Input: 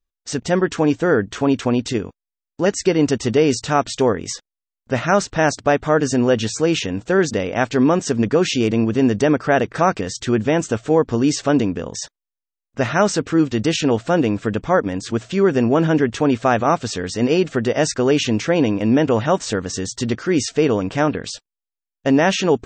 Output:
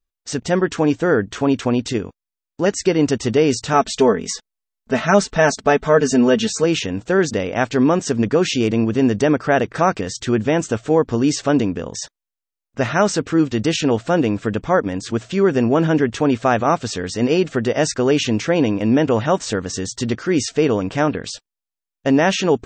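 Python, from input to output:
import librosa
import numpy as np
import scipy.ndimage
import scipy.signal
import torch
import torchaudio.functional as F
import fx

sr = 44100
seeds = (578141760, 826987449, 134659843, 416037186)

y = fx.comb(x, sr, ms=4.6, depth=0.75, at=(3.73, 6.64))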